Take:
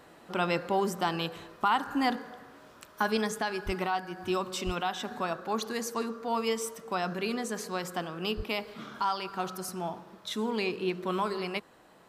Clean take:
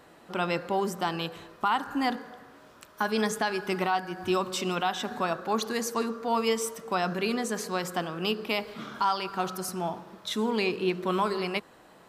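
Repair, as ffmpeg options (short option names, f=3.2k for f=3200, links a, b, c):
-filter_complex "[0:a]asplit=3[a][b][c];[a]afade=t=out:st=3.65:d=0.02[d];[b]highpass=f=140:w=0.5412,highpass=f=140:w=1.3066,afade=t=in:st=3.65:d=0.02,afade=t=out:st=3.77:d=0.02[e];[c]afade=t=in:st=3.77:d=0.02[f];[d][e][f]amix=inputs=3:normalize=0,asplit=3[g][h][i];[g]afade=t=out:st=4.65:d=0.02[j];[h]highpass=f=140:w=0.5412,highpass=f=140:w=1.3066,afade=t=in:st=4.65:d=0.02,afade=t=out:st=4.77:d=0.02[k];[i]afade=t=in:st=4.77:d=0.02[l];[j][k][l]amix=inputs=3:normalize=0,asplit=3[m][n][o];[m]afade=t=out:st=8.36:d=0.02[p];[n]highpass=f=140:w=0.5412,highpass=f=140:w=1.3066,afade=t=in:st=8.36:d=0.02,afade=t=out:st=8.48:d=0.02[q];[o]afade=t=in:st=8.48:d=0.02[r];[p][q][r]amix=inputs=3:normalize=0,asetnsamples=n=441:p=0,asendcmd='3.17 volume volume 3.5dB',volume=0dB"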